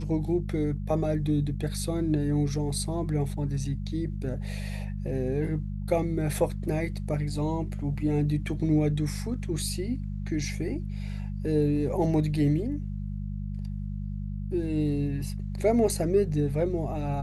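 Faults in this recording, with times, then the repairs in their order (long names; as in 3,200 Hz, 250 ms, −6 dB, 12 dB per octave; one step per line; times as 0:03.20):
mains hum 50 Hz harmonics 4 −33 dBFS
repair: hum removal 50 Hz, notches 4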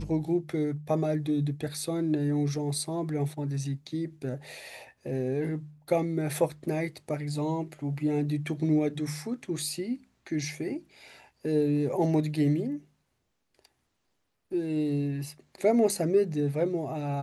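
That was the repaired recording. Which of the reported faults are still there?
none of them is left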